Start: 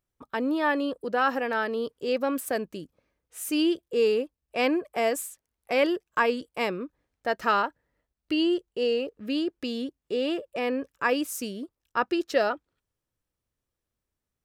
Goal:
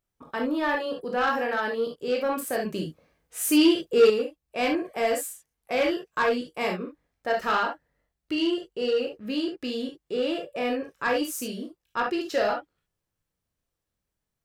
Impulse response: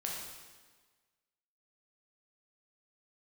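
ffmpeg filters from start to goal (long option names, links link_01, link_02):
-filter_complex "[1:a]atrim=start_sample=2205,atrim=end_sample=3528[link_01];[0:a][link_01]afir=irnorm=-1:irlink=0,asoftclip=type=tanh:threshold=-18dB,asettb=1/sr,asplit=3[link_02][link_03][link_04];[link_02]atrim=end=2.654[link_05];[link_03]atrim=start=2.65:end=4.1,asetpts=PTS-STARTPTS,afade=type=in:duration=0.004:curve=qsin,afade=type=out:start_time=1.446:duration=0.004:curve=qsin,acontrast=65[link_06];[link_04]atrim=start=4.096[link_07];[link_05][link_06]acrossfade=duration=0.004:curve1=hsin:curve2=qsin[link_08];[link_08][link_07]acrossfade=duration=0.004:curve1=qsin:curve2=hsin,volume=1.5dB"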